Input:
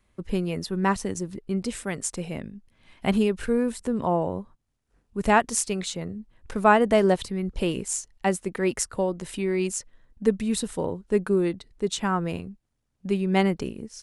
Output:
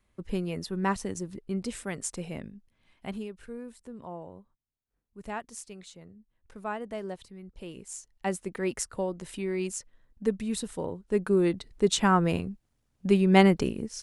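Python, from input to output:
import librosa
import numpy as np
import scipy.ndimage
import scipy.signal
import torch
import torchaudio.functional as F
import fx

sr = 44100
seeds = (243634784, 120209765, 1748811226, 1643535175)

y = fx.gain(x, sr, db=fx.line((2.46, -4.5), (3.34, -17.0), (7.62, -17.0), (8.34, -5.5), (11.02, -5.5), (11.68, 3.0)))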